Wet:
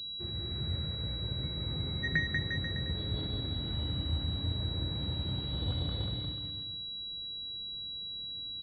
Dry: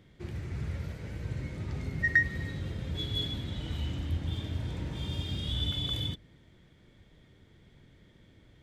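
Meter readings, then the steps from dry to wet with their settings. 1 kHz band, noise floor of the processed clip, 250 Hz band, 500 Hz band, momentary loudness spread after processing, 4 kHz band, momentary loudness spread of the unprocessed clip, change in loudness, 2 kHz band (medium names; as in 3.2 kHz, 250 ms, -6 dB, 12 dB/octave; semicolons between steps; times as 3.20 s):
0.0 dB, -41 dBFS, -0.5 dB, +0.5 dB, 5 LU, +3.5 dB, 12 LU, -1.5 dB, -5.5 dB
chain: bouncing-ball echo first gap 190 ms, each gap 0.85×, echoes 5; class-D stage that switches slowly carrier 3.9 kHz; trim -2.5 dB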